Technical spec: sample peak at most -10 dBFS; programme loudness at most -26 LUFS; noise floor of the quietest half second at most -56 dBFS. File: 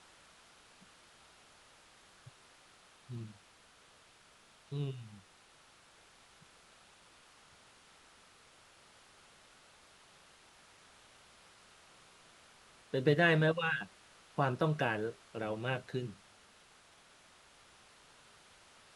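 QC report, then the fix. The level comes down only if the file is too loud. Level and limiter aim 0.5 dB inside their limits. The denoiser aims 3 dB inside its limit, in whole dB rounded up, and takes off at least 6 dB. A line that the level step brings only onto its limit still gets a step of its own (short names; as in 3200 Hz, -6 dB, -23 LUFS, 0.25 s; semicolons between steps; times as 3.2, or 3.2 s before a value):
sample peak -15.0 dBFS: OK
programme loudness -34.5 LUFS: OK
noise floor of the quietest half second -63 dBFS: OK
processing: none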